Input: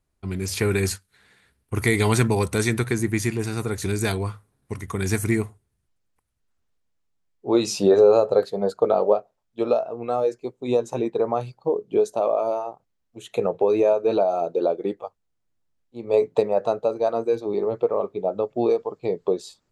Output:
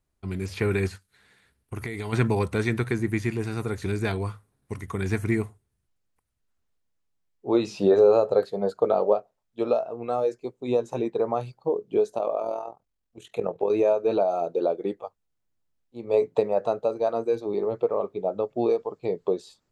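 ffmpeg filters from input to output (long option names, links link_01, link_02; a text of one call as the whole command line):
ffmpeg -i in.wav -filter_complex "[0:a]asplit=3[link_01][link_02][link_03];[link_01]afade=type=out:start_time=0.87:duration=0.02[link_04];[link_02]acompressor=threshold=-26dB:ratio=6:attack=3.2:release=140:knee=1:detection=peak,afade=type=in:start_time=0.87:duration=0.02,afade=type=out:start_time=2.12:duration=0.02[link_05];[link_03]afade=type=in:start_time=2.12:duration=0.02[link_06];[link_04][link_05][link_06]amix=inputs=3:normalize=0,asettb=1/sr,asplit=3[link_07][link_08][link_09];[link_07]atrim=end=12.184[link_10];[link_08]atrim=start=12.18:end=13.71,asetpts=PTS-STARTPTS,afade=type=in:duration=0.004:curve=qsin,afade=type=out:start_time=1.526:duration=0.004:curve=qsin,tremolo=f=42:d=0.621[link_11];[link_09]atrim=start=13.706[link_12];[link_10][link_11]acrossfade=duration=0.004:curve1=hsin:curve2=qsin[link_13];[link_13][link_12]acrossfade=duration=0.004:curve1=qsin:curve2=hsin,acrossover=split=3600[link_14][link_15];[link_15]acompressor=threshold=-47dB:ratio=4:attack=1:release=60[link_16];[link_14][link_16]amix=inputs=2:normalize=0,volume=-2.5dB" out.wav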